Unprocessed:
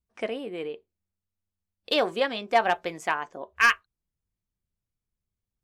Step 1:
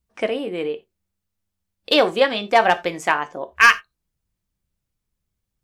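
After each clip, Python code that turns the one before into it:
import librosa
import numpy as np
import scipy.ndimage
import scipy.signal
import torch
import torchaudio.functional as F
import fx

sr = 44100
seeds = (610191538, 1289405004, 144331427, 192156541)

y = fx.rev_gated(x, sr, seeds[0], gate_ms=110, shape='falling', drr_db=12.0)
y = y * librosa.db_to_amplitude(7.5)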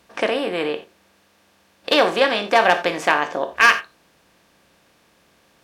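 y = fx.bin_compress(x, sr, power=0.6)
y = scipy.signal.sosfilt(scipy.signal.butter(2, 64.0, 'highpass', fs=sr, output='sos'), y)
y = y * librosa.db_to_amplitude(-2.5)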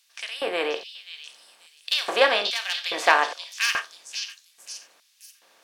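y = fx.filter_lfo_highpass(x, sr, shape='square', hz=1.2, low_hz=530.0, high_hz=3700.0, q=0.81)
y = fx.echo_stepped(y, sr, ms=533, hz=4500.0, octaves=0.7, feedback_pct=70, wet_db=-2.5)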